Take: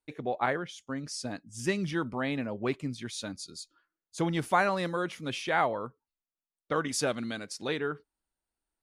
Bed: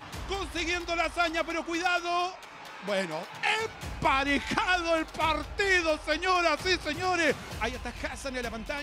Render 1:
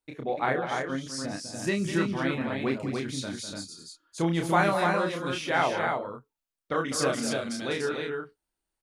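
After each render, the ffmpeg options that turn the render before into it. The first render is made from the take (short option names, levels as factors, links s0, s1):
-filter_complex "[0:a]asplit=2[s0][s1];[s1]adelay=30,volume=0.631[s2];[s0][s2]amix=inputs=2:normalize=0,aecho=1:1:201.2|291.5:0.316|0.631"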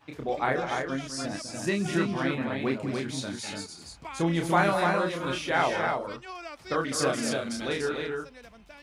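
-filter_complex "[1:a]volume=0.168[s0];[0:a][s0]amix=inputs=2:normalize=0"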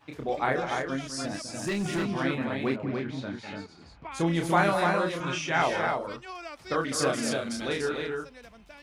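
-filter_complex "[0:a]asettb=1/sr,asplit=3[s0][s1][s2];[s0]atrim=end=1.274[s3];[s1]atrim=start=1.27:end=2.1,asetpts=PTS-STARTPTS,afade=t=in:d=0.004:c=qsin,afade=t=out:st=0.826:d=0.004:c=qsin,asoftclip=type=hard:threshold=0.0562[s4];[s2]atrim=start=2.096[s5];[s3][s4]acrossfade=d=0.004:c1=hsin:c2=qsin[s6];[s6][s5]acrossfade=d=0.004:c1=qsin:c2=hsin,asettb=1/sr,asplit=3[s7][s8][s9];[s7]atrim=end=2.764[s10];[s8]atrim=start=2.76:end=4.12,asetpts=PTS-STARTPTS,afade=t=in:d=0.004:c=qsin,afade=t=out:st=1.356:d=0.004:c=qsin,lowpass=2500[s11];[s9]atrim=start=4.116[s12];[s10][s11]acrossfade=d=0.004:c1=hsin:c2=qsin[s13];[s13][s12]acrossfade=d=0.004:c1=qsin:c2=hsin,asettb=1/sr,asplit=3[s14][s15][s16];[s14]atrim=end=5.204[s17];[s15]atrim=start=5.2:end=5.62,asetpts=PTS-STARTPTS,afade=t=in:d=0.004:c=qsin,afade=t=out:st=0.416:d=0.004:c=qsin,highpass=130,equalizer=f=160:t=q:w=4:g=9,equalizer=f=240:t=q:w=4:g=-8,equalizer=f=500:t=q:w=4:g=-8,equalizer=f=2600:t=q:w=4:g=4,equalizer=f=4100:t=q:w=4:g=-6,equalizer=f=6000:t=q:w=4:g=7,lowpass=f=7900:w=0.5412,lowpass=f=7900:w=1.3066[s18];[s16]atrim=start=5.616[s19];[s17][s18]acrossfade=d=0.004:c1=hsin:c2=qsin[s20];[s20][s19]acrossfade=d=0.004:c1=qsin:c2=hsin"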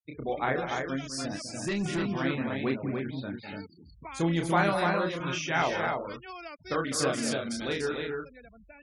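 -af "equalizer=f=890:w=0.53:g=-2.5,afftfilt=real='re*gte(hypot(re,im),0.00631)':imag='im*gte(hypot(re,im),0.00631)':win_size=1024:overlap=0.75"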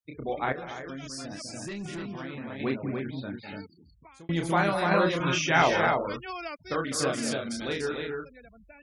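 -filter_complex "[0:a]asettb=1/sr,asplit=3[s0][s1][s2];[s0]atrim=end=0.524[s3];[s1]atrim=start=0.52:end=2.6,asetpts=PTS-STARTPTS,afade=t=in:d=0.004:c=qsin,afade=t=out:st=2.076:d=0.004:c=qsin,acompressor=threshold=0.02:ratio=6:attack=3.2:release=140:knee=1:detection=peak[s4];[s2]atrim=start=2.596[s5];[s3][s4]acrossfade=d=0.004:c1=hsin:c2=qsin[s6];[s6][s5]acrossfade=d=0.004:c1=qsin:c2=hsin,asettb=1/sr,asplit=3[s7][s8][s9];[s7]atrim=end=4.914[s10];[s8]atrim=start=4.91:end=6.58,asetpts=PTS-STARTPTS,afade=t=in:d=0.004:c=qsin,afade=t=out:st=1.666:d=0.004:c=qsin,acontrast=39[s11];[s9]atrim=start=6.576[s12];[s10][s11]acrossfade=d=0.004:c1=hsin:c2=qsin[s13];[s13][s12]acrossfade=d=0.004:c1=qsin:c2=hsin,asplit=2[s14][s15];[s14]atrim=end=4.29,asetpts=PTS-STARTPTS,afade=t=out:st=3.59:d=0.7[s16];[s15]atrim=start=4.29,asetpts=PTS-STARTPTS,afade=t=in:d=0.004:c=hsin[s17];[s16][s17]concat=n=2:v=0:a=1"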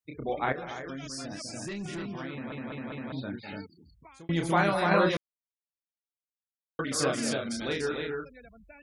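-filter_complex "[0:a]asplit=7[s0][s1][s2][s3][s4][s5][s6];[s0]atrim=end=2.522[s7];[s1]atrim=start=2.318:end=2.522[s8];[s2]atrim=start=2.318:end=2.522[s9];[s3]atrim=start=2.318:end=2.522[s10];[s4]atrim=start=3.118:end=5.17,asetpts=PTS-STARTPTS,afade=t=out:st=2.048:d=0.004:c=hsin[s11];[s5]atrim=start=5.17:end=6.79,asetpts=PTS-STARTPTS,volume=0[s12];[s6]atrim=start=6.79,asetpts=PTS-STARTPTS,afade=t=in:d=0.004:c=hsin[s13];[s7][s8]acrossfade=d=0.004:c1=hsin:c2=hsin[s14];[s14][s9]acrossfade=d=0.004:c1=hsin:c2=hsin[s15];[s15][s10]acrossfade=d=0.004:c1=hsin:c2=hsin[s16];[s11][s12][s13]concat=n=3:v=0:a=1[s17];[s16][s17]acrossfade=d=0.004:c1=hsin:c2=hsin"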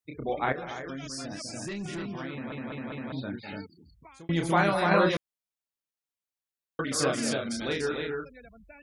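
-af "volume=1.12"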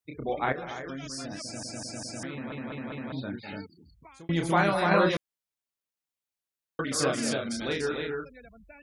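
-filter_complex "[0:a]asplit=5[s0][s1][s2][s3][s4];[s0]atrim=end=1.632[s5];[s1]atrim=start=1.428:end=1.632[s6];[s2]atrim=start=1.428:end=1.632[s7];[s3]atrim=start=1.428:end=1.632[s8];[s4]atrim=start=2.228[s9];[s5][s6]acrossfade=d=0.004:c1=hsin:c2=hsin[s10];[s10][s7]acrossfade=d=0.004:c1=hsin:c2=hsin[s11];[s11][s8]acrossfade=d=0.004:c1=hsin:c2=hsin[s12];[s12][s9]acrossfade=d=0.004:c1=hsin:c2=hsin"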